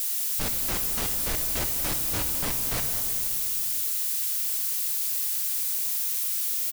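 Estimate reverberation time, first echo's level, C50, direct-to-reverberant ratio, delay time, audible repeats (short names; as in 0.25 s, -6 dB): 2.9 s, -14.0 dB, 5.5 dB, 4.5 dB, 0.209 s, 1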